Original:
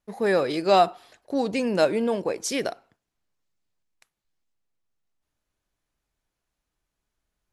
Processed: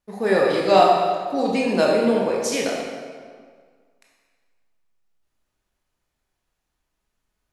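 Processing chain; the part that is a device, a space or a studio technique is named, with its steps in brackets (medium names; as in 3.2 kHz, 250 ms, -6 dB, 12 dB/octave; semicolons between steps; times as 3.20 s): stairwell (reverberation RT60 1.8 s, pre-delay 17 ms, DRR -3 dB)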